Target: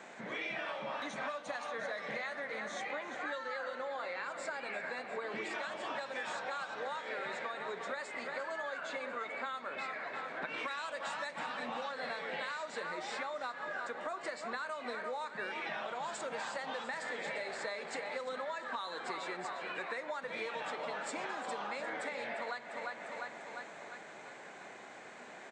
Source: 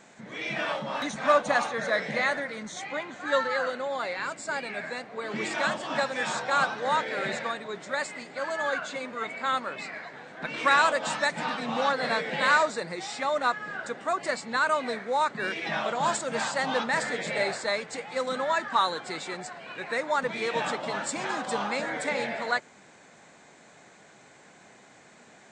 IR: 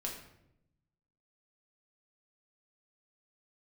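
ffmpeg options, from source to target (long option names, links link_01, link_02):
-filter_complex "[0:a]bass=frequency=250:gain=-12,treble=frequency=4000:gain=-7,aecho=1:1:349|698|1047|1396|1745|2094:0.224|0.123|0.0677|0.0372|0.0205|0.0113,acrossover=split=130|3000[link_01][link_02][link_03];[link_02]acompressor=threshold=-30dB:ratio=6[link_04];[link_01][link_04][link_03]amix=inputs=3:normalize=0,asplit=2[link_05][link_06];[1:a]atrim=start_sample=2205,lowpass=4200[link_07];[link_06][link_07]afir=irnorm=-1:irlink=0,volume=-9.5dB[link_08];[link_05][link_08]amix=inputs=2:normalize=0,acompressor=threshold=-40dB:ratio=6,volume=2.5dB"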